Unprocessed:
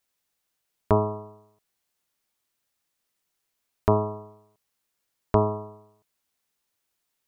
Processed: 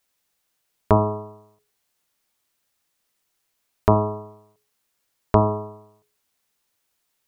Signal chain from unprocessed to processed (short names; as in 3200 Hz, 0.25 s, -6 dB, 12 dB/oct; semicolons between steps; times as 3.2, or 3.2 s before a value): notches 60/120/180/240/300/360/420 Hz; ending taper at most 140 dB/s; gain +5 dB